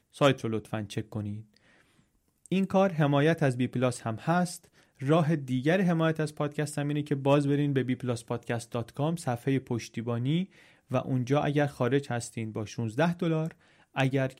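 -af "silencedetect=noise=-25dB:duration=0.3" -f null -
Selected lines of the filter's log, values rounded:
silence_start: 1.21
silence_end: 2.52 | silence_duration: 1.31
silence_start: 4.45
silence_end: 5.06 | silence_duration: 0.61
silence_start: 10.41
silence_end: 10.93 | silence_duration: 0.52
silence_start: 13.43
silence_end: 13.97 | silence_duration: 0.55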